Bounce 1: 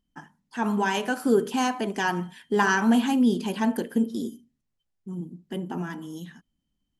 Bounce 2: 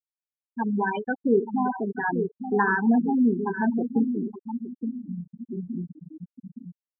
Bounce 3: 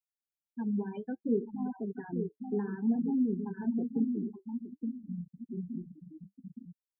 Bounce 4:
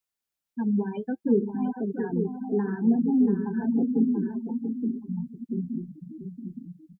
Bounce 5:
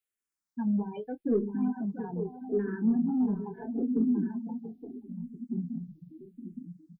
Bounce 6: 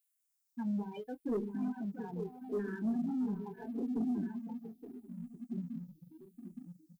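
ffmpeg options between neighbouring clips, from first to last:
-filter_complex "[0:a]asplit=2[a][b];[b]adelay=869,lowpass=f=2.9k:p=1,volume=-7dB,asplit=2[c][d];[d]adelay=869,lowpass=f=2.9k:p=1,volume=0.42,asplit=2[e][f];[f]adelay=869,lowpass=f=2.9k:p=1,volume=0.42,asplit=2[g][h];[h]adelay=869,lowpass=f=2.9k:p=1,volume=0.42,asplit=2[i][j];[j]adelay=869,lowpass=f=2.9k:p=1,volume=0.42[k];[a][c][e][g][i][k]amix=inputs=6:normalize=0,acompressor=mode=upward:threshold=-31dB:ratio=2.5,afftfilt=real='re*gte(hypot(re,im),0.178)':imag='im*gte(hypot(re,im),0.178)':win_size=1024:overlap=0.75"
-filter_complex "[0:a]equalizer=f=1.2k:t=o:w=2.6:g=-12,acrossover=split=130|570[a][b][c];[c]acompressor=threshold=-46dB:ratio=6[d];[a][b][d]amix=inputs=3:normalize=0,flanger=delay=1.3:depth=8.2:regen=-55:speed=0.58:shape=sinusoidal"
-af "aecho=1:1:684:0.355,volume=7dB"
-filter_complex "[0:a]asoftclip=type=tanh:threshold=-14dB,asplit=2[a][b];[b]adelay=24,volume=-13.5dB[c];[a][c]amix=inputs=2:normalize=0,asplit=2[d][e];[e]afreqshift=-0.79[f];[d][f]amix=inputs=2:normalize=1,volume=-1.5dB"
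-filter_complex "[0:a]asplit=2[a][b];[b]aeval=exprs='sgn(val(0))*max(abs(val(0))-0.00335,0)':c=same,volume=-11.5dB[c];[a][c]amix=inputs=2:normalize=0,crystalizer=i=4.5:c=0,asoftclip=type=tanh:threshold=-20dB,volume=-7.5dB"

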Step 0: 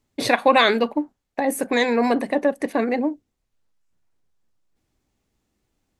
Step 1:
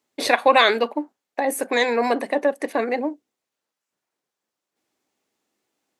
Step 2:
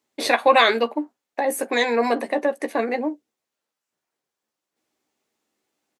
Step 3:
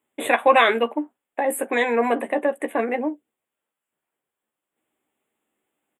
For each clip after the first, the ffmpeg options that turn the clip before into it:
-af "highpass=350,volume=1dB"
-filter_complex "[0:a]asplit=2[a][b];[b]adelay=13,volume=-8.5dB[c];[a][c]amix=inputs=2:normalize=0,volume=-1dB"
-af "asuperstop=centerf=5100:order=8:qfactor=1.3"

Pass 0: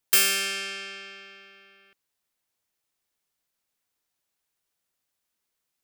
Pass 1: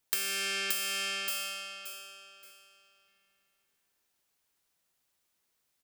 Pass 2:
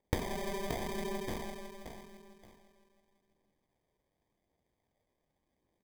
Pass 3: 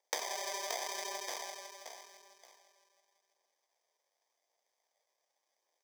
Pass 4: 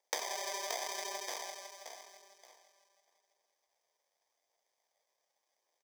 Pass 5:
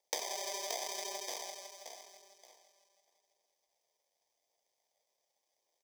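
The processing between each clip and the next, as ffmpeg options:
-filter_complex "[0:a]asplit=2[a][b];[b]aecho=0:1:575|1150|1725|2300:0.562|0.157|0.0441|0.0123[c];[a][c]amix=inputs=2:normalize=0,acompressor=threshold=-31dB:ratio=12,volume=2dB"
-af "acrusher=samples=32:mix=1:aa=0.000001,aphaser=in_gain=1:out_gain=1:delay=2.1:decay=0.23:speed=0.88:type=triangular,volume=-4dB"
-af "highpass=f=560:w=0.5412,highpass=f=560:w=1.3066,equalizer=f=5.7k:t=o:w=0.61:g=13,volume=1dB"
-filter_complex "[0:a]asplit=2[a][b];[b]adelay=641.4,volume=-17dB,highshelf=f=4k:g=-14.4[c];[a][c]amix=inputs=2:normalize=0"
-af "equalizer=f=1.4k:t=o:w=0.67:g=-14.5,volume=1dB"

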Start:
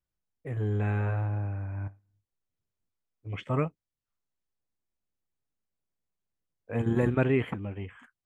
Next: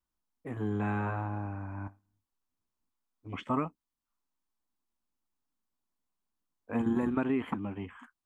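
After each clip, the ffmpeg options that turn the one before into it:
-af "equalizer=f=125:t=o:w=1:g=-11,equalizer=f=250:t=o:w=1:g=9,equalizer=f=500:t=o:w=1:g=-7,equalizer=f=1k:t=o:w=1:g=9,equalizer=f=2k:t=o:w=1:g=-4,acompressor=threshold=-25dB:ratio=10"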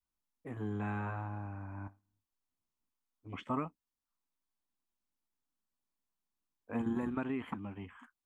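-af "adynamicequalizer=threshold=0.00708:dfrequency=390:dqfactor=0.89:tfrequency=390:tqfactor=0.89:attack=5:release=100:ratio=0.375:range=2.5:mode=cutabove:tftype=bell,volume=-4.5dB"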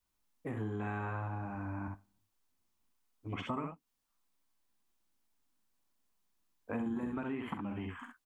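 -af "aecho=1:1:44|65:0.299|0.531,acompressor=threshold=-43dB:ratio=4,volume=7dB"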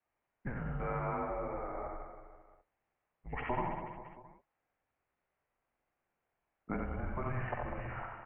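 -af "aecho=1:1:90|198|327.6|483.1|669.7:0.631|0.398|0.251|0.158|0.1,highpass=f=320:t=q:w=0.5412,highpass=f=320:t=q:w=1.307,lowpass=f=2.6k:t=q:w=0.5176,lowpass=f=2.6k:t=q:w=0.7071,lowpass=f=2.6k:t=q:w=1.932,afreqshift=-270,volume=4dB"

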